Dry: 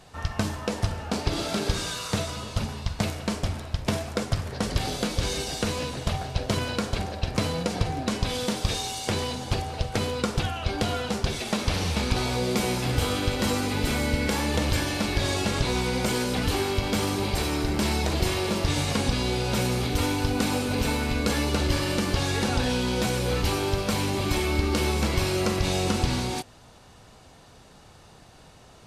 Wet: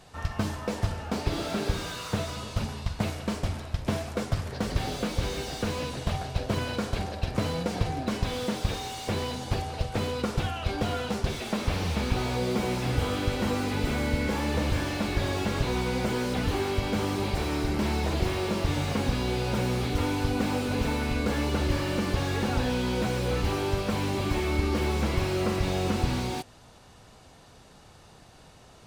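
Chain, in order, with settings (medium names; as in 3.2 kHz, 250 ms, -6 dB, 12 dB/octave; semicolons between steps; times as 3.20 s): slew-rate limiter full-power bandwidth 64 Hz; trim -1.5 dB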